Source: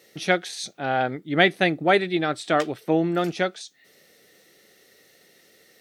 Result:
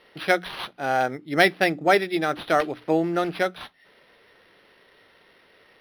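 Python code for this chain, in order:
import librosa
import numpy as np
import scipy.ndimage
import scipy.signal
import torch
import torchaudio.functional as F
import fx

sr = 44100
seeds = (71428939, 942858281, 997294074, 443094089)

y = fx.low_shelf(x, sr, hz=310.0, db=-7.5)
y = fx.hum_notches(y, sr, base_hz=60, count=5)
y = np.interp(np.arange(len(y)), np.arange(len(y))[::6], y[::6])
y = y * librosa.db_to_amplitude(2.5)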